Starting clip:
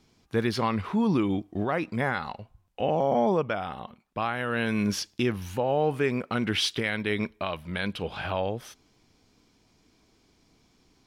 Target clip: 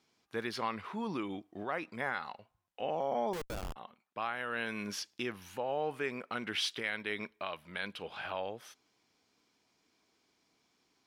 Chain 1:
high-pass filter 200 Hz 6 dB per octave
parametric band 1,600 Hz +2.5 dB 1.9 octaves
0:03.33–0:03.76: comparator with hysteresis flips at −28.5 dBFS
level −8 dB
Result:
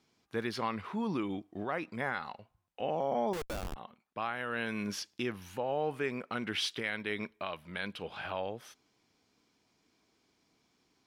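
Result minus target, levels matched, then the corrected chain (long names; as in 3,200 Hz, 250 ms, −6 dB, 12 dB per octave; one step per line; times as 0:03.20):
250 Hz band +2.5 dB
high-pass filter 440 Hz 6 dB per octave
parametric band 1,600 Hz +2.5 dB 1.9 octaves
0:03.33–0:03.76: comparator with hysteresis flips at −28.5 dBFS
level −8 dB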